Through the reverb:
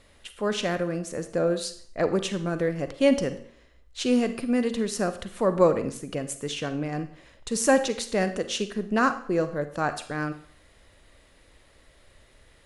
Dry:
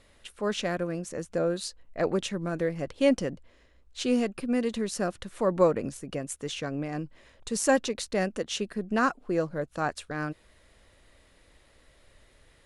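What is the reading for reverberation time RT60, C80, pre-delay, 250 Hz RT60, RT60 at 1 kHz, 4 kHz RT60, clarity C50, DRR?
0.55 s, 15.5 dB, 37 ms, 0.50 s, 0.55 s, 0.50 s, 11.5 dB, 10.0 dB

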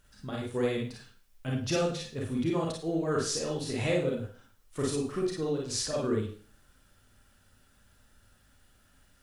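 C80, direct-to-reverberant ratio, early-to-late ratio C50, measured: 8.5 dB, -3.0 dB, 3.5 dB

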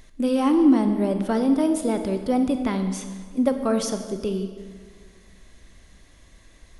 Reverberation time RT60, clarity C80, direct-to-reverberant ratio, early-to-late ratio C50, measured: 1.8 s, 9.5 dB, 7.0 dB, 8.0 dB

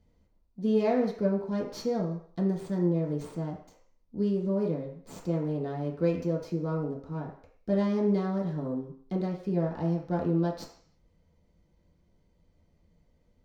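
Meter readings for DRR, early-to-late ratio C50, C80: -4.5 dB, 6.5 dB, 10.0 dB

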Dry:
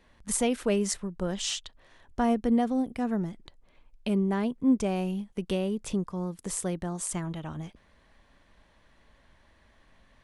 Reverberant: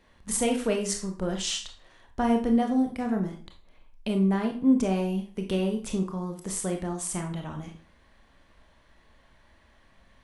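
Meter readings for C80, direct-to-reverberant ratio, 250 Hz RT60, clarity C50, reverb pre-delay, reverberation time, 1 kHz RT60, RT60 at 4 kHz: 14.0 dB, 3.0 dB, 0.40 s, 9.0 dB, 23 ms, 0.40 s, 0.40 s, 0.35 s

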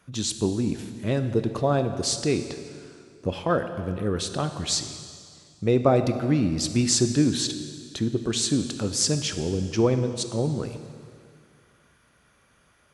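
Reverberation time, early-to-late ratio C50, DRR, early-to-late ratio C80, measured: 2.1 s, 9.5 dB, 8.0 dB, 10.5 dB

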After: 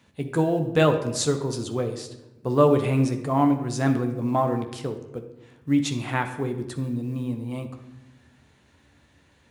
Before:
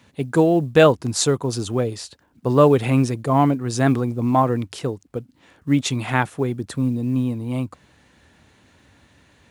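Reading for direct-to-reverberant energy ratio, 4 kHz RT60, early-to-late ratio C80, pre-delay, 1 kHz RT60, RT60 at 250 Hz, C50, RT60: 5.5 dB, 0.65 s, 12.0 dB, 14 ms, 0.90 s, 1.5 s, 9.5 dB, 1.0 s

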